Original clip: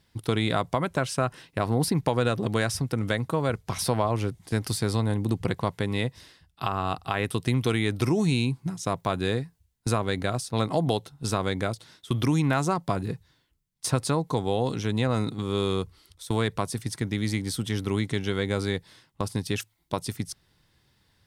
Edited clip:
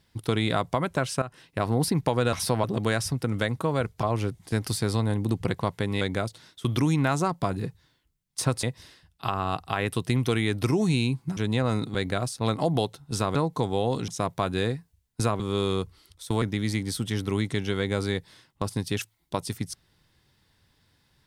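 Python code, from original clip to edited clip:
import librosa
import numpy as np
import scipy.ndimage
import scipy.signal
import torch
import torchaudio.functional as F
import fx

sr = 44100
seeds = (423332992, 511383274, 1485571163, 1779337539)

y = fx.edit(x, sr, fx.fade_in_from(start_s=1.22, length_s=0.4, floor_db=-13.0),
    fx.move(start_s=3.72, length_s=0.31, to_s=2.33),
    fx.swap(start_s=8.75, length_s=1.32, other_s=14.82, other_length_s=0.58),
    fx.move(start_s=11.47, length_s=2.62, to_s=6.01),
    fx.cut(start_s=16.42, length_s=0.59), tone=tone)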